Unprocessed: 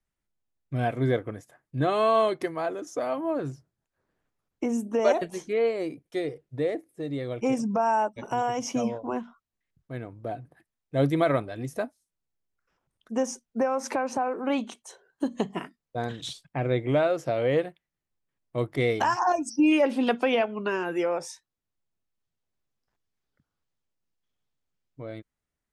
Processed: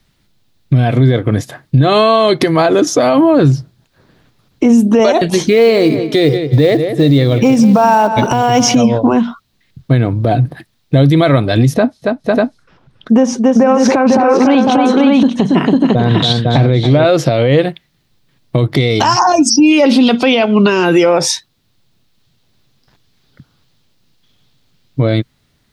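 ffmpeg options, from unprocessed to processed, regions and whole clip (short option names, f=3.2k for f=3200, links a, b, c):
-filter_complex "[0:a]asettb=1/sr,asplit=3[a][b][c];[a]atrim=end=5.424[d];[b]atrim=start=5.42:end=8.75,asetpts=PTS-STARTPTS,afade=t=in:d=0.004:c=qsin,afade=t=out:st=3.326:d=0.004:c=qsin,acrusher=bits=8:mode=log:mix=0:aa=0.000001,asplit=2[e][f];[f]adelay=180,lowpass=f=3.8k:p=1,volume=-14.5dB,asplit=2[g][h];[h]adelay=180,lowpass=f=3.8k:p=1,volume=0.33,asplit=2[i][j];[j]adelay=180,lowpass=f=3.8k:p=1,volume=0.33[k];[e][g][i][k]amix=inputs=4:normalize=0,atrim=end_sample=146853[l];[c]atrim=start=8.746[m];[d][l]acrossfade=d=0.004:c1=hsin:c2=qsin[n];[n][m]acrossfade=d=0.004:c1=qsin:c2=hsin,asettb=1/sr,asplit=3[o][p][q];[o]atrim=end=11.744[r];[p]atrim=start=11.74:end=17.05,asetpts=PTS-STARTPTS,afade=t=in:d=0.004:c=qsin,afade=t=out:st=5.306:d=0.004:c=qsin,aemphasis=mode=reproduction:type=75kf,aecho=1:1:279|501|595:0.299|0.376|0.447,atrim=end_sample=234171[s];[q]atrim=start=17.046[t];[r][s]acrossfade=d=0.004:c1=hsin:c2=qsin[u];[u][t]acrossfade=d=0.004:c1=qsin:c2=hsin,asettb=1/sr,asplit=3[v][w][x];[v]atrim=end=18.764[y];[w]atrim=start=18.76:end=21.11,asetpts=PTS-STARTPTS,afade=t=in:d=0.004:c=qsin,afade=t=out:st=2.346:d=0.004:c=qsin,equalizer=f=5.6k:w=1.3:g=6.5,bandreject=f=1.7k:w=9.2[z];[x]atrim=start=21.106[aa];[y][z]acrossfade=d=0.004:c1=hsin:c2=qsin[ab];[ab][aa]acrossfade=d=0.004:c1=qsin:c2=hsin,equalizer=f=125:t=o:w=1:g=9,equalizer=f=250:t=o:w=1:g=4,equalizer=f=4k:t=o:w=1:g=11,equalizer=f=8k:t=o:w=1:g=-4,acompressor=threshold=-27dB:ratio=6,alimiter=level_in=25dB:limit=-1dB:release=50:level=0:latency=1,volume=-1dB"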